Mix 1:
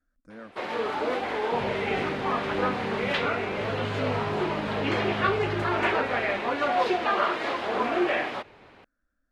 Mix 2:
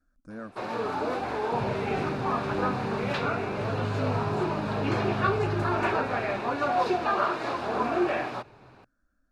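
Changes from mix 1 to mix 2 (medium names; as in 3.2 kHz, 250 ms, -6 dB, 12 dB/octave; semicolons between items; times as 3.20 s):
speech +5.0 dB; master: add graphic EQ with 31 bands 125 Hz +11 dB, 500 Hz -4 dB, 2 kHz -10 dB, 3.15 kHz -10 dB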